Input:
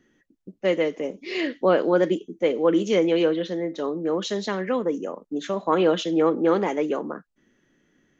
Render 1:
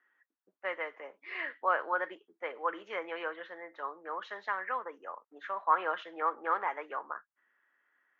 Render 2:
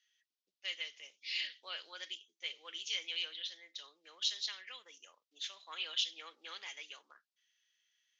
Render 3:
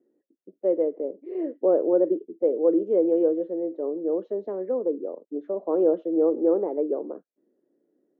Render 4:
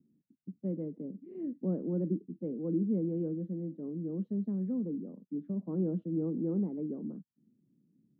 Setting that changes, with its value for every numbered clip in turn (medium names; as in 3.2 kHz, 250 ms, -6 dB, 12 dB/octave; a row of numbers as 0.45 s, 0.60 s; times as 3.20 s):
Butterworth band-pass, frequency: 1.3 kHz, 4.1 kHz, 440 Hz, 170 Hz